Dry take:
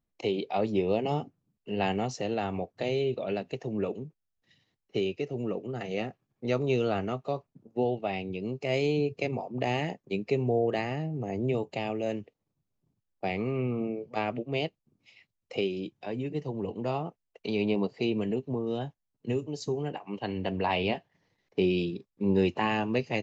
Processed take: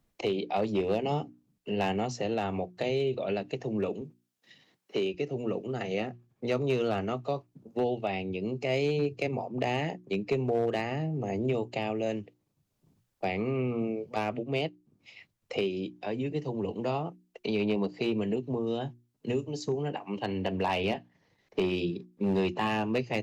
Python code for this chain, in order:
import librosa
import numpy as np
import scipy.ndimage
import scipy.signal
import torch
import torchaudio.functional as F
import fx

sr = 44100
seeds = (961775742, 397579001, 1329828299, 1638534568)

y = fx.clip_asym(x, sr, top_db=-21.0, bottom_db=-16.5)
y = fx.hum_notches(y, sr, base_hz=60, count=6)
y = fx.highpass(y, sr, hz=200.0, slope=12, at=(4.01, 5.14))
y = fx.band_squash(y, sr, depth_pct=40)